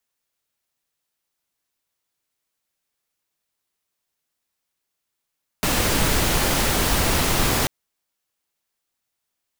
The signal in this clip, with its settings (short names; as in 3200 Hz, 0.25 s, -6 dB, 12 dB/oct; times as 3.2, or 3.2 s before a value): noise pink, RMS -20 dBFS 2.04 s